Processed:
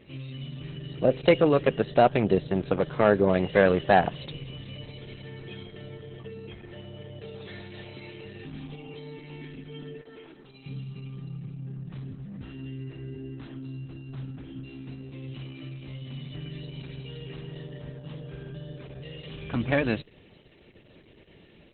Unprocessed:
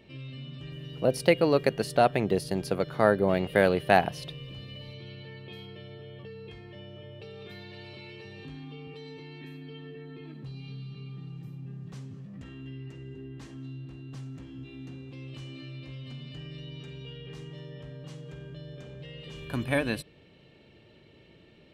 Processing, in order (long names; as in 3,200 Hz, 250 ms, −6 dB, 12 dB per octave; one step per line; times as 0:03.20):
0:10.01–0:10.66: three-way crossover with the lows and the highs turned down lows −20 dB, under 310 Hz, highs −21 dB, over 5,300 Hz
soft clipping −11 dBFS, distortion −18 dB
level +4.5 dB
Opus 8 kbit/s 48,000 Hz